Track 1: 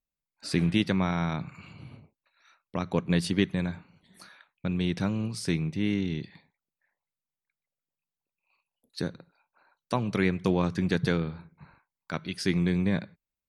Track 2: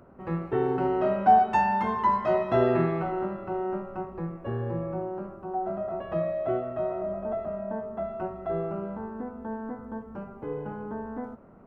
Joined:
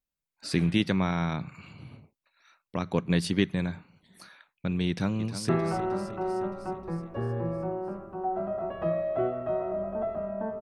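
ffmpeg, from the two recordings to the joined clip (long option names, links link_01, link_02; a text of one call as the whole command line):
ffmpeg -i cue0.wav -i cue1.wav -filter_complex "[0:a]apad=whole_dur=10.61,atrim=end=10.61,atrim=end=5.492[link_01];[1:a]atrim=start=2.788:end=7.91[link_02];[link_01][link_02]acrossfade=duration=0.004:curve1=hsin:curve2=hsin,asplit=2[link_03][link_04];[link_04]afade=type=in:start_time=4.88:duration=0.01,afade=type=out:start_time=5.49:duration=0.01,aecho=0:1:310|620|930|1240|1550|1860|2170|2480:0.281838|0.183195|0.119077|0.0773998|0.0503099|0.0327014|0.0212559|0.0138164[link_05];[link_03][link_05]amix=inputs=2:normalize=0" out.wav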